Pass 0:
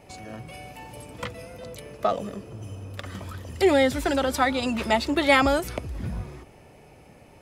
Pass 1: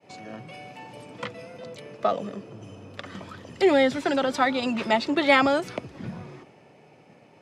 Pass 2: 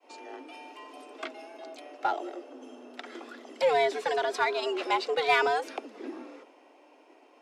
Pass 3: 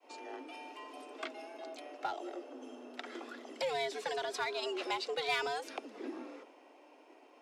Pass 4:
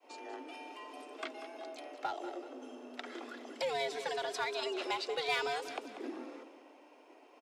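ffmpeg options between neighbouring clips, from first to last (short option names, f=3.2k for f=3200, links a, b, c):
-af "lowpass=5.6k,agate=range=-33dB:threshold=-48dB:ratio=3:detection=peak,highpass=f=130:w=0.5412,highpass=f=130:w=1.3066"
-filter_complex "[0:a]afreqshift=150,asplit=2[a][b];[b]asoftclip=type=hard:threshold=-20dB,volume=-7.5dB[c];[a][c]amix=inputs=2:normalize=0,volume=-7dB"
-filter_complex "[0:a]acrossover=split=160|3000[a][b][c];[b]acompressor=threshold=-36dB:ratio=2.5[d];[a][d][c]amix=inputs=3:normalize=0,volume=-2dB"
-af "aecho=1:1:190|380|570|760:0.251|0.105|0.0443|0.0186"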